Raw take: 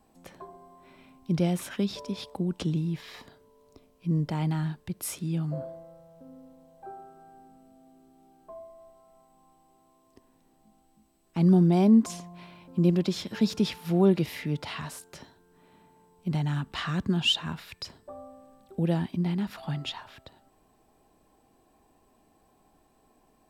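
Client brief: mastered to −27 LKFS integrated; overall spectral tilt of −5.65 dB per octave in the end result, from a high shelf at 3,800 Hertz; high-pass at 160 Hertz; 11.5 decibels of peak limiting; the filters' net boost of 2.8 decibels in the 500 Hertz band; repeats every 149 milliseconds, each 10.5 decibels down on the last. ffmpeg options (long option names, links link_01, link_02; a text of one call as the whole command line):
ffmpeg -i in.wav -af "highpass=160,equalizer=frequency=500:width_type=o:gain=4.5,highshelf=frequency=3800:gain=-4.5,alimiter=limit=-21.5dB:level=0:latency=1,aecho=1:1:149|298|447:0.299|0.0896|0.0269,volume=6dB" out.wav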